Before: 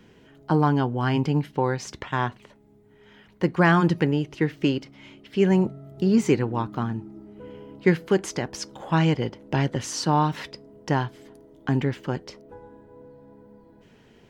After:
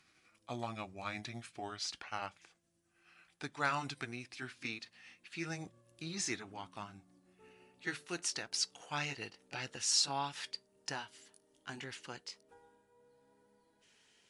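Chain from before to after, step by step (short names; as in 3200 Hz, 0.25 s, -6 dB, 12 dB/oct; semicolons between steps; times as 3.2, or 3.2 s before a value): gliding pitch shift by -4.5 st ending unshifted; pre-emphasis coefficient 0.97; gain +4.5 dB; MP3 96 kbps 24000 Hz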